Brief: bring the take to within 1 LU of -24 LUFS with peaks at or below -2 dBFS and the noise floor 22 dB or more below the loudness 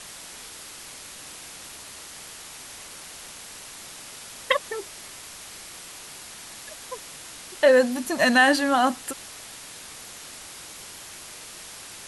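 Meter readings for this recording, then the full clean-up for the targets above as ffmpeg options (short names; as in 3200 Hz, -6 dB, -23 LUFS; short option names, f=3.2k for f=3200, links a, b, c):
noise floor -42 dBFS; noise floor target -44 dBFS; loudness -22.0 LUFS; peak -6.0 dBFS; loudness target -24.0 LUFS
-> -af "afftdn=nr=6:nf=-42"
-af "volume=-2dB"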